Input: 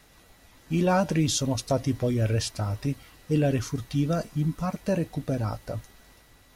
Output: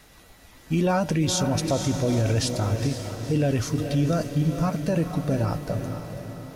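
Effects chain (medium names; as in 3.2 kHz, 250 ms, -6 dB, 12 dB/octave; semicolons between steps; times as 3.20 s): echo that smears into a reverb 481 ms, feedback 52%, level -9 dB; peak limiter -18.5 dBFS, peak gain reduction 6.5 dB; trim +4 dB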